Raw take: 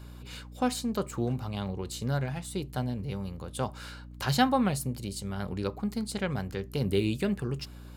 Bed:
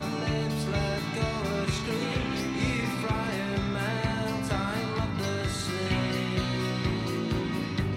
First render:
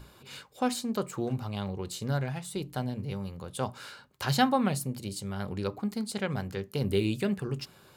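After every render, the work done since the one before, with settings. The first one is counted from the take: hum notches 60/120/180/240/300 Hz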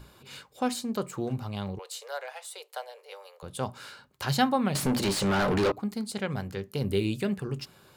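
1.79–3.43 s: steep high-pass 460 Hz 72 dB/octave; 4.75–5.72 s: overdrive pedal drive 34 dB, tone 2.8 kHz, clips at -16.5 dBFS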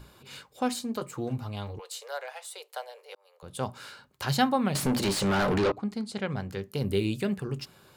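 0.79–1.91 s: comb of notches 190 Hz; 3.15–3.61 s: fade in; 5.58–6.49 s: distance through air 57 m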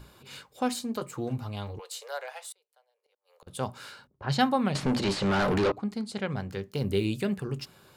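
2.52–3.47 s: inverted gate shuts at -44 dBFS, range -29 dB; 4.07–5.45 s: level-controlled noise filter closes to 460 Hz, open at -21 dBFS; 6.42–7.04 s: median filter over 3 samples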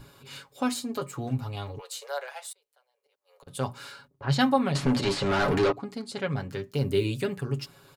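comb 7.2 ms, depth 65%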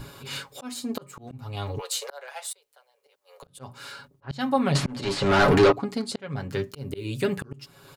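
slow attack 539 ms; in parallel at +1 dB: gain riding within 4 dB 2 s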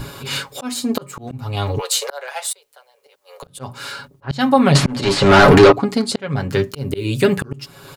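trim +10.5 dB; peak limiter -1 dBFS, peak gain reduction 2 dB

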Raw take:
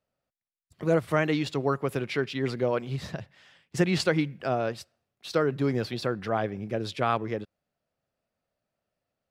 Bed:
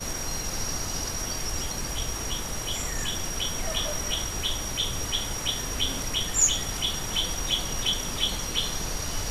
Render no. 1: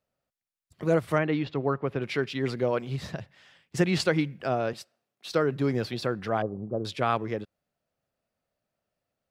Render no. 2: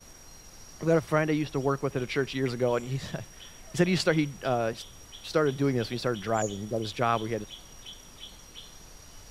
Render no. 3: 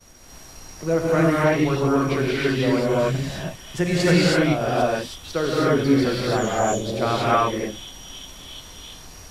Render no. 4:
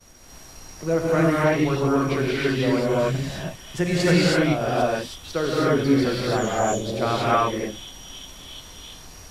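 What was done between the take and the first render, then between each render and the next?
1.18–2.02 s: distance through air 280 m; 4.73–5.32 s: high-pass 190 Hz; 6.42–6.85 s: elliptic low-pass 1.2 kHz
add bed -18.5 dB
gated-style reverb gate 350 ms rising, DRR -7.5 dB
trim -1 dB

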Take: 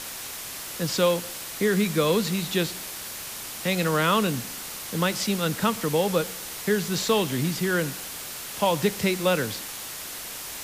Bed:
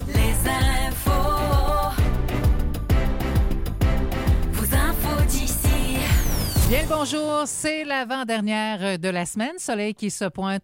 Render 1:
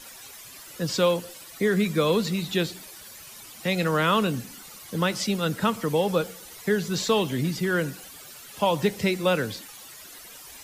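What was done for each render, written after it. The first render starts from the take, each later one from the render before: noise reduction 13 dB, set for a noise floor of -37 dBFS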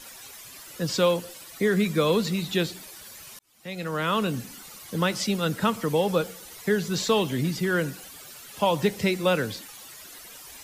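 3.39–4.45 s: fade in linear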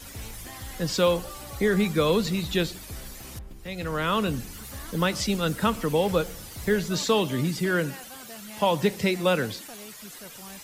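add bed -20.5 dB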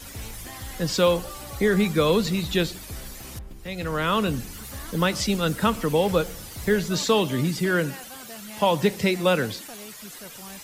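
trim +2 dB

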